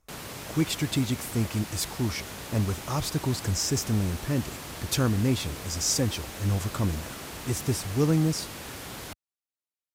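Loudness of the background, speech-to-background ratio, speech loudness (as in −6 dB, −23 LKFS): −38.5 LKFS, 10.0 dB, −28.5 LKFS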